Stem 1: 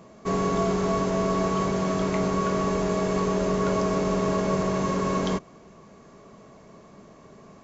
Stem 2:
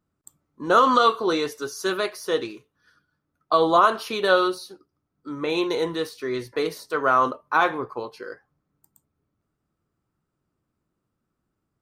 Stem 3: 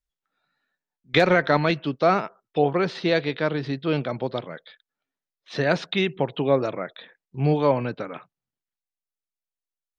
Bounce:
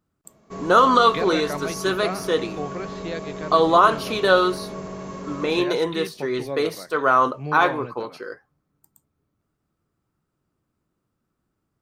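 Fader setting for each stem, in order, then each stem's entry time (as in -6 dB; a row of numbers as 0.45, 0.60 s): -9.0, +2.0, -10.5 dB; 0.25, 0.00, 0.00 s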